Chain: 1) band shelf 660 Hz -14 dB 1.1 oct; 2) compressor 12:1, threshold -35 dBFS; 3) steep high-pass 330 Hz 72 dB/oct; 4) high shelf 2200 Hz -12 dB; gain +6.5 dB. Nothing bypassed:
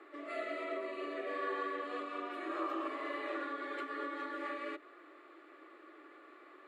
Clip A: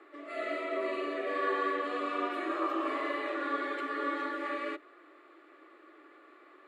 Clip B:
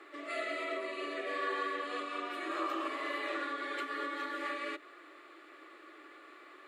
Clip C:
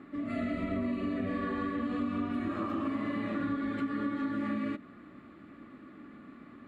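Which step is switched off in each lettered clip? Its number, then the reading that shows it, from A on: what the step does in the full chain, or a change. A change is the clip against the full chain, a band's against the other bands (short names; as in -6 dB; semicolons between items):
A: 2, mean gain reduction 4.0 dB; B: 4, 4 kHz band +6.5 dB; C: 3, 250 Hz band +14.0 dB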